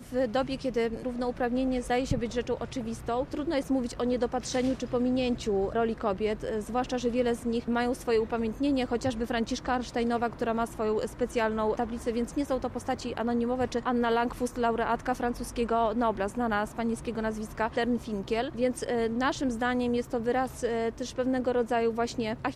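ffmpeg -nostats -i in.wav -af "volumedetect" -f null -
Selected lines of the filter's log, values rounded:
mean_volume: -29.1 dB
max_volume: -15.8 dB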